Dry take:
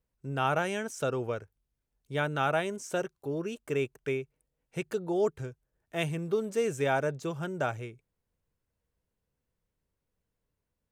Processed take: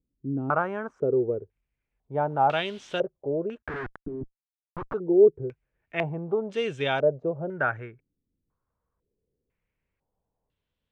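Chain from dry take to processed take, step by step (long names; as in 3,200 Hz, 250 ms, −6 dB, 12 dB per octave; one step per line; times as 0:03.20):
0:02.15–0:02.98: background noise white −52 dBFS
0:03.62–0:04.94: comparator with hysteresis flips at −41 dBFS
low-pass on a step sequencer 2 Hz 290–3,300 Hz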